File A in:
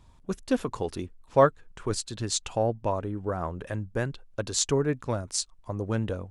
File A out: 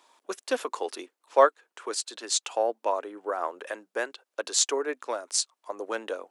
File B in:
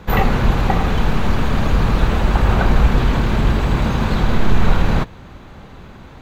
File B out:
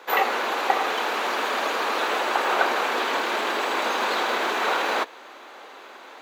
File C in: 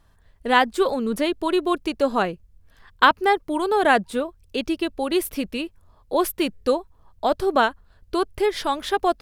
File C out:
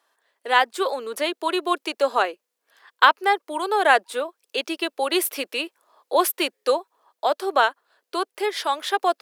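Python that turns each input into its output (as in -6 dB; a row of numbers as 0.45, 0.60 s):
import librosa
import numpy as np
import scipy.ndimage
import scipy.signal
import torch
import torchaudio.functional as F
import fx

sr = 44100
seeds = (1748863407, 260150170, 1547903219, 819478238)

y = scipy.signal.sosfilt(scipy.signal.bessel(8, 570.0, 'highpass', norm='mag', fs=sr, output='sos'), x)
y = fx.rider(y, sr, range_db=4, speed_s=2.0)
y = y * 10.0 ** (2.0 / 20.0)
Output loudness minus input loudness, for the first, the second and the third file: +0.5, -5.5, -0.5 LU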